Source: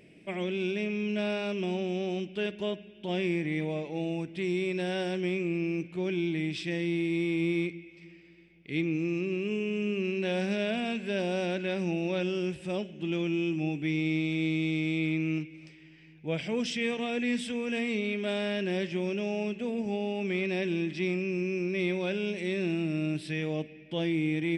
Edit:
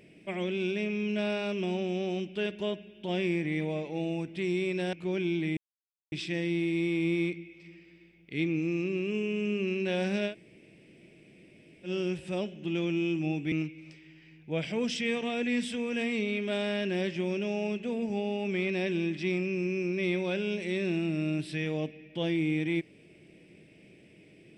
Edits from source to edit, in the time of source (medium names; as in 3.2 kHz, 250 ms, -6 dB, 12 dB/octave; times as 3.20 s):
4.93–5.85 s: delete
6.49 s: insert silence 0.55 s
10.67–12.25 s: room tone, crossfade 0.10 s
13.89–15.28 s: delete